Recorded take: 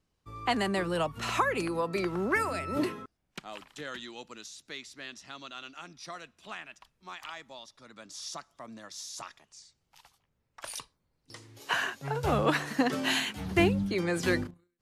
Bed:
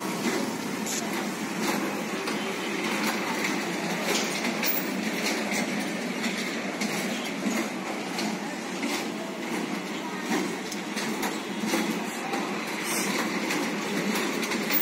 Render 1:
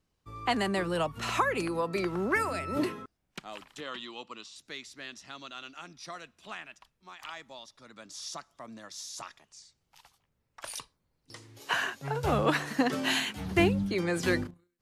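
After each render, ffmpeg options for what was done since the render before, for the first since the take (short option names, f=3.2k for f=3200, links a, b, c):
-filter_complex "[0:a]asettb=1/sr,asplit=3[a][b][c];[a]atrim=end=3.804[d];[b]atrim=start=3.8:end=4.56,asetpts=PTS-STARTPTS,afade=t=in:d=0.004:c=qsin,afade=t=out:st=0.756:d=0.004:c=qsin,highpass=100,equalizer=f=150:t=q:w=4:g=-7,equalizer=f=1.1k:t=q:w=4:g=10,equalizer=f=1.6k:t=q:w=4:g=-6,equalizer=f=2.9k:t=q:w=4:g=6,equalizer=f=6.4k:t=q:w=4:g=-10,lowpass=f=8k:w=0.5412,lowpass=f=8k:w=1.3066[e];[c]atrim=start=4.556[f];[d][e]acrossfade=d=0.004:c1=hsin:c2=qsin[g];[g][f]acrossfade=d=0.004:c1=qsin:c2=hsin,asplit=2[h][i];[h]atrim=end=7.19,asetpts=PTS-STARTPTS,afade=t=out:st=6.65:d=0.54:silence=0.501187[j];[i]atrim=start=7.19,asetpts=PTS-STARTPTS,afade=t=in:d=0.004:c=hsin:silence=0.501187[k];[j][k]concat=n=2:v=0:a=1"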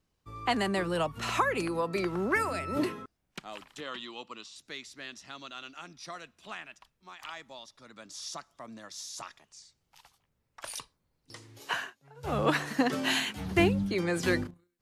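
-filter_complex "[0:a]asplit=3[a][b][c];[a]atrim=end=11.94,asetpts=PTS-STARTPTS,afade=t=out:st=11.65:d=0.29:silence=0.0749894[d];[b]atrim=start=11.94:end=12.16,asetpts=PTS-STARTPTS,volume=-22.5dB[e];[c]atrim=start=12.16,asetpts=PTS-STARTPTS,afade=t=in:d=0.29:silence=0.0749894[f];[d][e][f]concat=n=3:v=0:a=1"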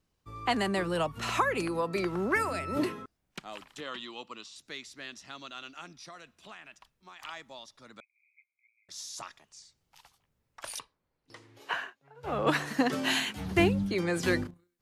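-filter_complex "[0:a]asettb=1/sr,asplit=3[a][b][c];[a]atrim=end=5.934[d];[b]atrim=start=5.93:end=7.16,asetpts=PTS-STARTPTS,afade=t=in:d=0.004:c=qsin,afade=t=out:st=1.226:d=0.004:c=qsin,acompressor=threshold=-45dB:ratio=2.5:attack=3.2:release=140:knee=1:detection=peak[e];[c]atrim=start=7.156[f];[d][e]acrossfade=d=0.004:c1=hsin:c2=qsin[g];[g][f]acrossfade=d=0.004:c1=qsin:c2=hsin,asettb=1/sr,asplit=3[h][i][j];[h]atrim=end=8.004[k];[i]atrim=start=8:end=8.89,asetpts=PTS-STARTPTS,afade=t=in:d=0.004:c=qsin,afade=t=out:st=0.886:d=0.004:c=qsin,asuperpass=centerf=2300:order=20:qfactor=5.1[l];[j]atrim=start=8.886[m];[k][l]acrossfade=d=0.004:c1=hsin:c2=qsin[n];[n][m]acrossfade=d=0.004:c1=qsin:c2=hsin,asettb=1/sr,asplit=3[o][p][q];[o]atrim=end=10.794[r];[p]atrim=start=10.79:end=12.47,asetpts=PTS-STARTPTS,afade=t=in:d=0.004:c=qsin,afade=t=out:st=1.676:d=0.004:c=qsin,bass=f=250:g=-7,treble=f=4k:g=-11[s];[q]atrim=start=12.466[t];[r][s]acrossfade=d=0.004:c1=hsin:c2=qsin[u];[u][t]acrossfade=d=0.004:c1=qsin:c2=hsin"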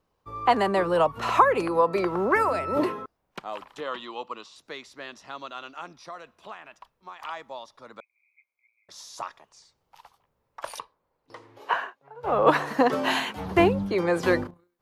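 -af "equalizer=f=500:t=o:w=1:g=8,equalizer=f=1k:t=o:w=1:g=10,equalizer=f=8k:t=o:w=1:g=-5"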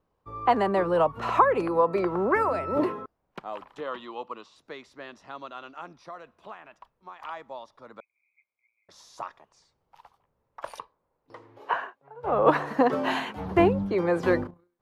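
-af "highshelf=f=2.6k:g=-11"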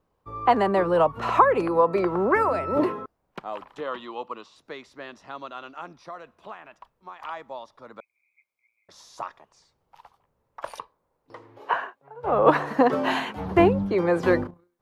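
-af "volume=2.5dB"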